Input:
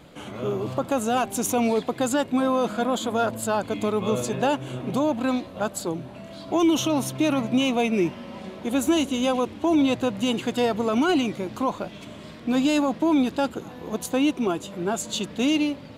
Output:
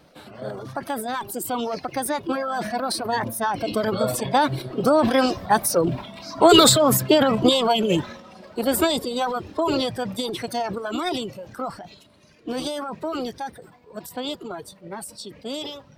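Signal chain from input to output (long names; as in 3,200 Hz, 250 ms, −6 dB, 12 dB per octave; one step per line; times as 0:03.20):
source passing by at 0:06.11, 7 m/s, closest 8.3 metres
formants moved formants +4 semitones
transient designer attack +2 dB, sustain +8 dB
reverb reduction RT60 1.9 s
level +8.5 dB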